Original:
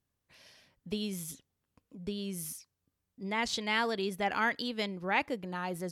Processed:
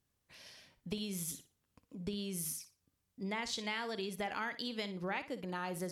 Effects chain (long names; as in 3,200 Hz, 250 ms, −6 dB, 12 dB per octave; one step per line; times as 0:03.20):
parametric band 6,900 Hz +2.5 dB 2.6 octaves
downward compressor 10 to 1, threshold −36 dBFS, peak gain reduction 13.5 dB
on a send: flutter between parallel walls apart 10 metres, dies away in 0.28 s
on the sum: level +1 dB